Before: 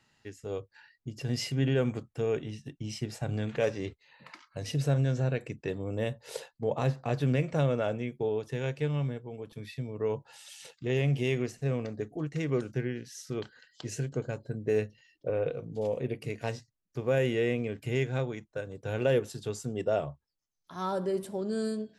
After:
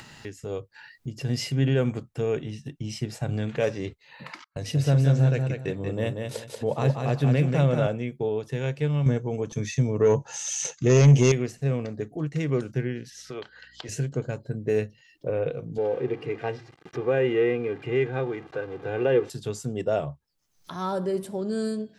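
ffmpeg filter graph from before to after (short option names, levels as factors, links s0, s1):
-filter_complex "[0:a]asettb=1/sr,asplit=3[s0][s1][s2];[s0]atrim=end=4.444[s3];[s1]atrim=start=4.44:end=7.87,asetpts=PTS-STARTPTS,afade=t=in:d=0.004:c=qsin,afade=t=out:st=3.426:d=0.004:c=qsin,agate=range=0.0316:threshold=0.00501:ratio=16:release=100:detection=peak,aecho=1:1:186|372|558:0.562|0.146|0.038,atrim=end_sample=151263[s4];[s2]atrim=start=7.866[s5];[s3][s4]acrossfade=d=0.004:c1=hsin:c2=qsin[s6];[s6][s5]acrossfade=d=0.004:c1=qsin:c2=hsin,asettb=1/sr,asplit=3[s7][s8][s9];[s7]atrim=end=9.064[s10];[s8]atrim=start=9.06:end=11.32,asetpts=PTS-STARTPTS,afade=t=in:d=0.004:c=qsin,afade=t=out:st=2.256:d=0.004:c=qsin,equalizer=f=4500:w=1.1:g=-9,aeval=exprs='0.168*sin(PI/2*1.78*val(0)/0.168)':c=same,lowpass=f=6300:t=q:w=16[s11];[s9]atrim=start=11.316[s12];[s10][s11]acrossfade=d=0.004:c1=hsin:c2=qsin[s13];[s13][s12]acrossfade=d=0.004:c1=qsin:c2=hsin,asettb=1/sr,asplit=3[s14][s15][s16];[s14]atrim=end=13.104[s17];[s15]atrim=start=13.1:end=13.89,asetpts=PTS-STARTPTS,afade=t=in:d=0.004:c=qsin,afade=t=out:st=0.786:d=0.004:c=qsin,acrossover=split=420 4700:gain=0.178 1 0.251[s18][s19][s20];[s18][s19][s20]amix=inputs=3:normalize=0,aeval=exprs='val(0)+0.000126*(sin(2*PI*60*n/s)+sin(2*PI*2*60*n/s)/2+sin(2*PI*3*60*n/s)/3+sin(2*PI*4*60*n/s)/4+sin(2*PI*5*60*n/s)/5)':c=same[s21];[s16]atrim=start=13.886[s22];[s17][s21]acrossfade=d=0.004:c1=hsin:c2=qsin[s23];[s23][s22]acrossfade=d=0.004:c1=qsin:c2=hsin,asettb=1/sr,asplit=3[s24][s25][s26];[s24]atrim=end=15.784[s27];[s25]atrim=start=15.78:end=19.3,asetpts=PTS-STARTPTS,afade=t=in:d=0.004:c=qsin,afade=t=out:st=3.516:d=0.004:c=qsin,aeval=exprs='val(0)+0.5*0.00841*sgn(val(0))':c=same,highpass=170,lowpass=2300,aecho=1:1:2.5:0.6,atrim=end_sample=155232[s28];[s26]atrim=start=19.296[s29];[s27][s28]acrossfade=d=0.004:c1=hsin:c2=qsin[s30];[s30][s29]acrossfade=d=0.004:c1=qsin:c2=hsin,equalizer=f=150:t=o:w=0.77:g=3,acompressor=mode=upward:threshold=0.0178:ratio=2.5,volume=1.41"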